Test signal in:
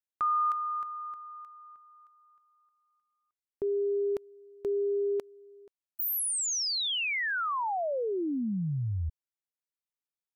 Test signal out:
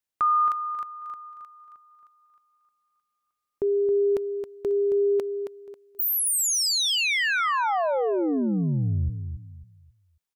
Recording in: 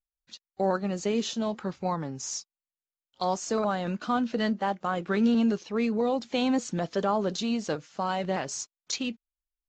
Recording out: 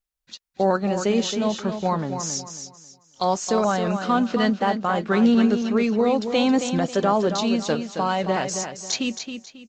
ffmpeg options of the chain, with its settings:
-af "aecho=1:1:271|542|813|1084:0.398|0.119|0.0358|0.0107,volume=2"

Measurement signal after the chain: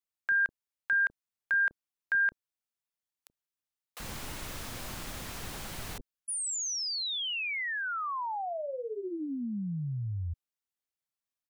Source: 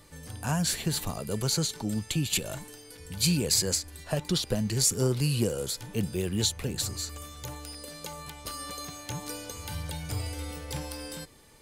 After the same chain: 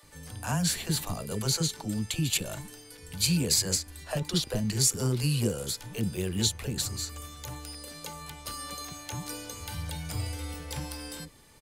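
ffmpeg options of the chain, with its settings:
-filter_complex "[0:a]acrossover=split=440[s0][s1];[s0]adelay=30[s2];[s2][s1]amix=inputs=2:normalize=0"

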